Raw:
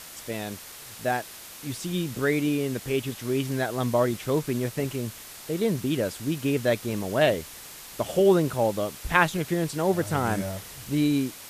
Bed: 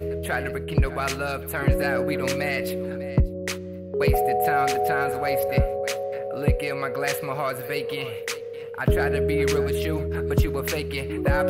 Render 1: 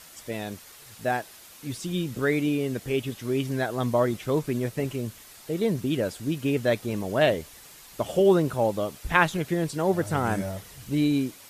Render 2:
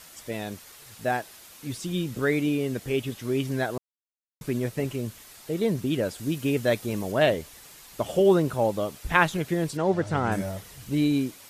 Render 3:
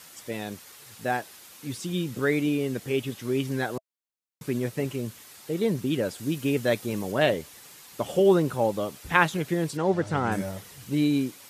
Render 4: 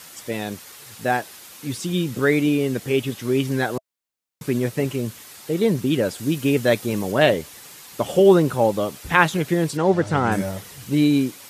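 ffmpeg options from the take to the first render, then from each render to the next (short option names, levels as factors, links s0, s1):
-af "afftdn=nr=7:nf=-44"
-filter_complex "[0:a]asettb=1/sr,asplit=3[s0][s1][s2];[s0]atrim=end=6.184[s3];[s1]atrim=start=6.18:end=7.12,asetpts=PTS-STARTPTS,afade=t=in:d=0.004:c=qsin,afade=t=out:st=0.936:d=0.004:c=qsin,highshelf=f=5600:g=4.5[s4];[s2]atrim=start=7.116[s5];[s3][s4]acrossfade=d=0.004:c1=hsin:c2=qsin[s6];[s6][s5]acrossfade=d=0.004:c1=qsin:c2=hsin,asettb=1/sr,asplit=3[s7][s8][s9];[s7]atrim=end=9.774[s10];[s8]atrim=start=9.77:end=10.32,asetpts=PTS-STARTPTS,afade=t=in:d=0.004:c=qsin,afade=t=out:st=0.546:d=0.004:c=qsin,lowpass=5600[s11];[s9]atrim=start=10.316[s12];[s10][s11]acrossfade=d=0.004:c1=hsin:c2=qsin[s13];[s13][s12]acrossfade=d=0.004:c1=qsin:c2=hsin,asplit=3[s14][s15][s16];[s14]atrim=end=3.78,asetpts=PTS-STARTPTS,afade=t=out:st=3.776:d=0.004:c=hsin[s17];[s15]atrim=start=3.78:end=4.41,asetpts=PTS-STARTPTS,volume=0[s18];[s16]atrim=start=4.41,asetpts=PTS-STARTPTS,afade=t=in:d=0.004:c=hsin[s19];[s17][s18][s19]concat=n=3:v=0:a=1"
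-af "highpass=99,bandreject=f=650:w=12"
-af "volume=2,alimiter=limit=0.891:level=0:latency=1"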